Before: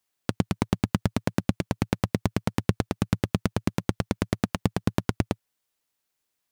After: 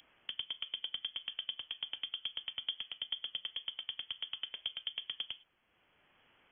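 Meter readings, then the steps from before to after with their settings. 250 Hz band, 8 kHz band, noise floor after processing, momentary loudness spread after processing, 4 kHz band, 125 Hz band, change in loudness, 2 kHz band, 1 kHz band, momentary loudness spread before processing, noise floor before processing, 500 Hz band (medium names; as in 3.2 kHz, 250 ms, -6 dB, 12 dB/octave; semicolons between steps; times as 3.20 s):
under -40 dB, under -40 dB, -73 dBFS, 3 LU, +5.5 dB, under -40 dB, -11.0 dB, -12.5 dB, -25.5 dB, 3 LU, -80 dBFS, -34.0 dB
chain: slow attack 122 ms; gated-style reverb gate 130 ms falling, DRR 11 dB; wow and flutter 150 cents; frequency inversion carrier 3.3 kHz; three bands compressed up and down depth 40%; trim +8 dB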